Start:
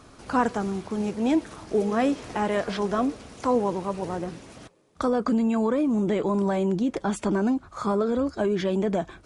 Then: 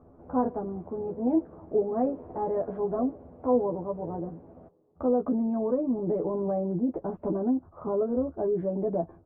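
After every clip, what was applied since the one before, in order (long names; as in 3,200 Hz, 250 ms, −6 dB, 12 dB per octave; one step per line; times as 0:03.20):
transistor ladder low-pass 900 Hz, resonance 25%
double-tracking delay 12 ms −2.5 dB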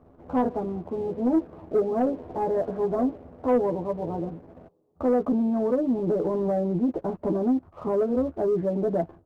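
leveller curve on the samples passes 1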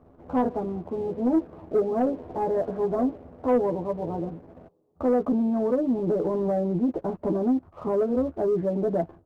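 no processing that can be heard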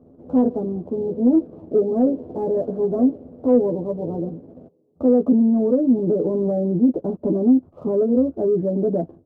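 octave-band graphic EQ 125/250/500/1,000/2,000 Hz +8/+11/+9/−3/−9 dB
level −5.5 dB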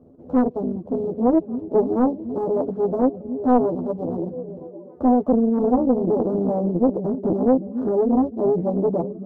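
reverb reduction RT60 0.51 s
echo through a band-pass that steps 283 ms, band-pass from 180 Hz, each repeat 0.7 octaves, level −8.5 dB
highs frequency-modulated by the lows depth 0.8 ms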